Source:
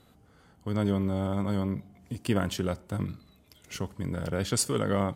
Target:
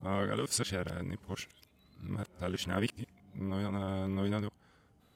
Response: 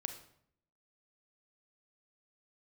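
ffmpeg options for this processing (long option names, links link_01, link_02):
-af "areverse,adynamicequalizer=threshold=0.00447:dfrequency=2400:dqfactor=0.78:tfrequency=2400:tqfactor=0.78:attack=5:release=100:ratio=0.375:range=3:mode=boostabove:tftype=bell,volume=-6.5dB"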